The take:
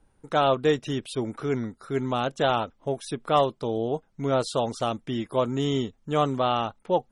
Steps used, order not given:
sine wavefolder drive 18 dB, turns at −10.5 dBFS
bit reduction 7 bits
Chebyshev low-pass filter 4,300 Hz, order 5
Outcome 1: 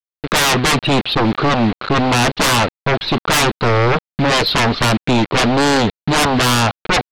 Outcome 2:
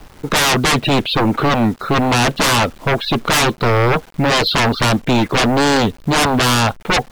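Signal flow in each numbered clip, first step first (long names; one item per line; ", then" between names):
bit reduction, then Chebyshev low-pass filter, then sine wavefolder
Chebyshev low-pass filter, then sine wavefolder, then bit reduction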